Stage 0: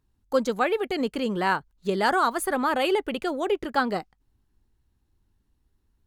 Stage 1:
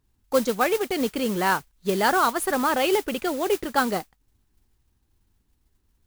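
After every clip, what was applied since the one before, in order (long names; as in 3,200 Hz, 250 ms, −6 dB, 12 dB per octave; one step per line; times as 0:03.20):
noise that follows the level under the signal 14 dB
level +1.5 dB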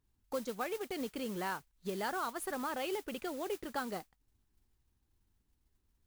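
downward compressor 2 to 1, threshold −31 dBFS, peak gain reduction 9 dB
level −8.5 dB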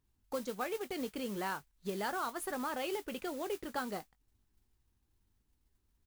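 double-tracking delay 20 ms −14 dB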